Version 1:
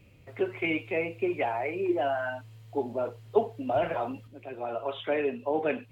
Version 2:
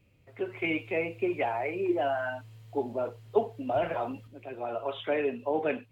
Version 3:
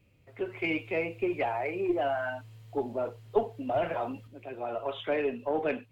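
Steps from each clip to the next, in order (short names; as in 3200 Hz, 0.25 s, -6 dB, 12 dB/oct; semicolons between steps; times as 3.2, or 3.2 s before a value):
AGC gain up to 8 dB; gain -8.5 dB
one diode to ground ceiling -13 dBFS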